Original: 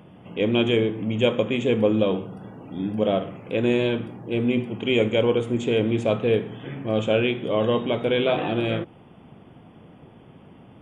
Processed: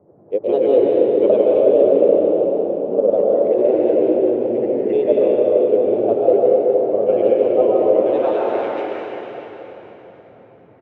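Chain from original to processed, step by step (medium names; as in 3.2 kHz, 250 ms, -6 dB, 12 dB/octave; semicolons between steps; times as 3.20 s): local Wiener filter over 15 samples; peaking EQ 390 Hz +10.5 dB 0.77 oct; frequency-shifting echo 344 ms, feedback 46%, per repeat +93 Hz, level -17 dB; granulator, pitch spread up and down by 3 st; band-pass sweep 580 Hz -> 2.1 kHz, 7.86–8.78 s; band noise 87–620 Hz -58 dBFS; plate-style reverb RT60 3.9 s, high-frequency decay 0.85×, pre-delay 110 ms, DRR -4 dB; trim +2.5 dB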